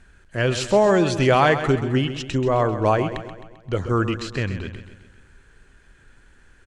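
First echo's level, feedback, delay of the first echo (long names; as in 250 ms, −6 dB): −11.0 dB, 52%, 131 ms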